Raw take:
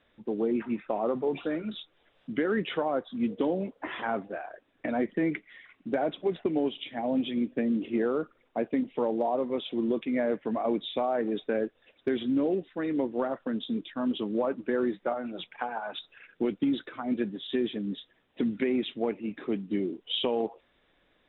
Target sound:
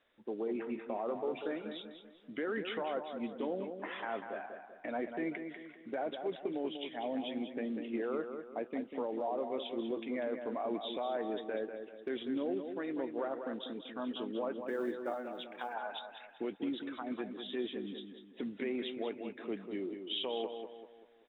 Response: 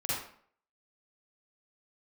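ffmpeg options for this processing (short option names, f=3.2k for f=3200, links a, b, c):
-filter_complex "[0:a]bass=f=250:g=-11,treble=f=4k:g=-1,alimiter=limit=-22.5dB:level=0:latency=1:release=31,asplit=3[a][b][c];[a]afade=t=out:st=14.6:d=0.02[d];[b]acrusher=bits=9:mode=log:mix=0:aa=0.000001,afade=t=in:st=14.6:d=0.02,afade=t=out:st=15.73:d=0.02[e];[c]afade=t=in:st=15.73:d=0.02[f];[d][e][f]amix=inputs=3:normalize=0,asplit=2[g][h];[h]adelay=194,lowpass=f=3.2k:p=1,volume=-7dB,asplit=2[i][j];[j]adelay=194,lowpass=f=3.2k:p=1,volume=0.43,asplit=2[k][l];[l]adelay=194,lowpass=f=3.2k:p=1,volume=0.43,asplit=2[m][n];[n]adelay=194,lowpass=f=3.2k:p=1,volume=0.43,asplit=2[o][p];[p]adelay=194,lowpass=f=3.2k:p=1,volume=0.43[q];[i][k][m][o][q]amix=inputs=5:normalize=0[r];[g][r]amix=inputs=2:normalize=0,volume=-5.5dB"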